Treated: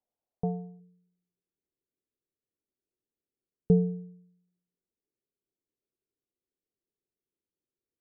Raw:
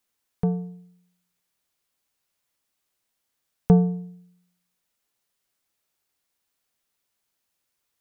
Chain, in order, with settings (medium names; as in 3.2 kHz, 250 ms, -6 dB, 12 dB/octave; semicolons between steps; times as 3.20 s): four-pole ladder low-pass 790 Hz, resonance 55%, from 0.79 s 450 Hz; trim +2 dB